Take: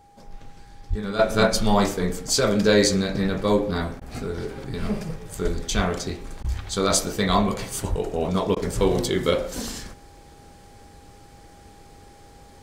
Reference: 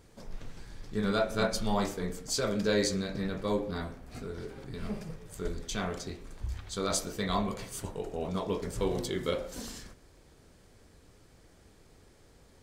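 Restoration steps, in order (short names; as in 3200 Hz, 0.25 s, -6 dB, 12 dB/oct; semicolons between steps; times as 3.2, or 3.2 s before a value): notch 810 Hz, Q 30; 0.89–1.01 HPF 140 Hz 24 dB/oct; 5.75–5.87 HPF 140 Hz 24 dB/oct; 7.89–8.01 HPF 140 Hz 24 dB/oct; interpolate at 4/6.43/8.55, 13 ms; 1.19 gain correction -10 dB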